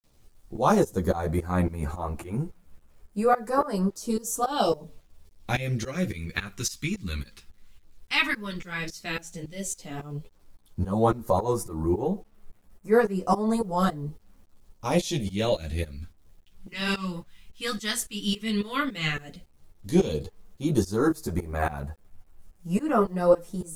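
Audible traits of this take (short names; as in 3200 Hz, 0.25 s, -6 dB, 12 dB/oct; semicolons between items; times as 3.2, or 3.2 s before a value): phasing stages 2, 0.1 Hz, lowest notch 610–3400 Hz; tremolo saw up 3.6 Hz, depth 95%; a quantiser's noise floor 12-bit, dither none; a shimmering, thickened sound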